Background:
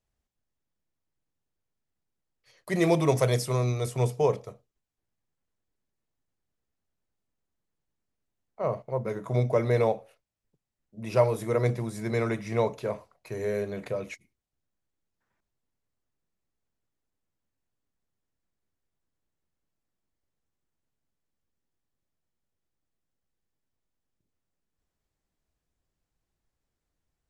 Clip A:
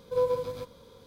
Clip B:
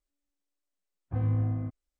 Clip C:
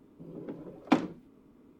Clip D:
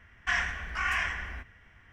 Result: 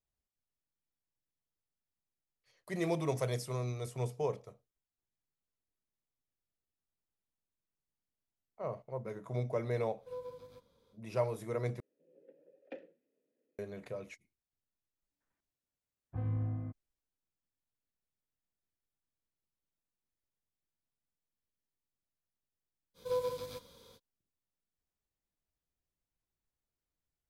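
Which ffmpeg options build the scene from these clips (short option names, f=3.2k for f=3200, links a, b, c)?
-filter_complex "[1:a]asplit=2[a][b];[0:a]volume=-10.5dB[c];[3:a]asplit=3[d][e][f];[d]bandpass=f=530:t=q:w=8,volume=0dB[g];[e]bandpass=f=1.84k:t=q:w=8,volume=-6dB[h];[f]bandpass=f=2.48k:t=q:w=8,volume=-9dB[i];[g][h][i]amix=inputs=3:normalize=0[j];[b]highshelf=f=2.2k:g=11[k];[c]asplit=2[l][m];[l]atrim=end=11.804[n];[j]atrim=end=1.79,asetpts=PTS-STARTPTS,volume=-9dB[o];[m]atrim=start=13.586[p];[a]atrim=end=1.06,asetpts=PTS-STARTPTS,volume=-18dB,afade=t=in:d=0.1,afade=t=out:st=0.96:d=0.1,adelay=9950[q];[2:a]atrim=end=1.99,asetpts=PTS-STARTPTS,volume=-7.5dB,afade=t=in:d=0.004:c=hsin,afade=t=out:st=1.986:d=0.004:c=hsin,adelay=15020[r];[k]atrim=end=1.06,asetpts=PTS-STARTPTS,volume=-8.5dB,afade=t=in:d=0.05,afade=t=out:st=1.01:d=0.05,adelay=22940[s];[n][o]acrossfade=d=0.004:c1=hsin:c2=hsin[t];[t][p]acrossfade=d=0.004:c1=hsin:c2=hsin[u];[u][q][r][s]amix=inputs=4:normalize=0"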